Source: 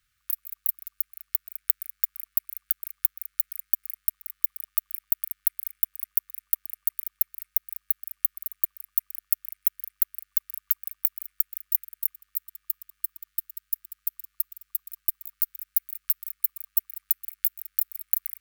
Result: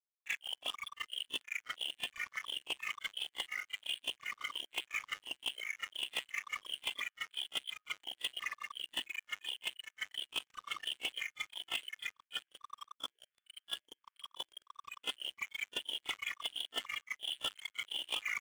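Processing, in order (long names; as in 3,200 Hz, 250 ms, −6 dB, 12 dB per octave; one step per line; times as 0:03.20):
pitch shifter gated in a rhythm +5 semitones, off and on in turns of 350 ms
noise reduction from a noise print of the clip's start 22 dB
noise gate with hold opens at −52 dBFS
brick-wall band-pass 240–3,500 Hz
leveller curve on the samples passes 5
backwards echo 33 ms −16 dB
level +15.5 dB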